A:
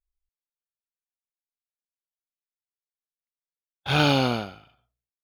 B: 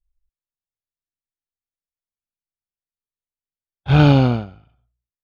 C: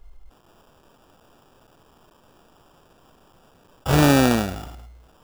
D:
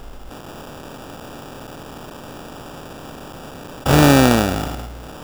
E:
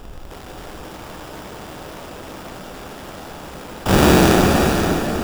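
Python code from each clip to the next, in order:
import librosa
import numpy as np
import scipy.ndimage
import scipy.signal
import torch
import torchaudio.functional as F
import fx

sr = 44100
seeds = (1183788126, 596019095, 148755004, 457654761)

y1 = fx.riaa(x, sr, side='playback')
y1 = fx.upward_expand(y1, sr, threshold_db=-30.0, expansion=1.5)
y1 = y1 * librosa.db_to_amplitude(3.0)
y2 = fx.peak_eq(y1, sr, hz=120.0, db=-12.5, octaves=0.84)
y2 = fx.sample_hold(y2, sr, seeds[0], rate_hz=2100.0, jitter_pct=0)
y2 = fx.env_flatten(y2, sr, amount_pct=50)
y3 = fx.bin_compress(y2, sr, power=0.6)
y3 = y3 * librosa.db_to_amplitude(3.0)
y4 = fx.cycle_switch(y3, sr, every=3, mode='inverted')
y4 = y4 + 10.0 ** (-7.5 / 20.0) * np.pad(y4, (int(523 * sr / 1000.0), 0))[:len(y4)]
y4 = fx.rev_plate(y4, sr, seeds[1], rt60_s=4.3, hf_ratio=0.8, predelay_ms=0, drr_db=2.0)
y4 = y4 * librosa.db_to_amplitude(-2.0)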